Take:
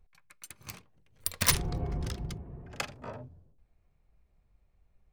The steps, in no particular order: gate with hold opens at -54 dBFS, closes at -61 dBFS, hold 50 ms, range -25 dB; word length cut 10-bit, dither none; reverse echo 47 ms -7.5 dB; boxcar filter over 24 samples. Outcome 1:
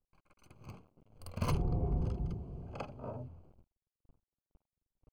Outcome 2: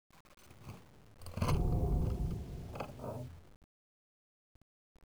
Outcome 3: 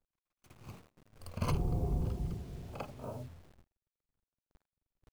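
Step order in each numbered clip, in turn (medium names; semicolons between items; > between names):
word length cut > reverse echo > gate with hold > boxcar filter; reverse echo > gate with hold > boxcar filter > word length cut; boxcar filter > word length cut > reverse echo > gate with hold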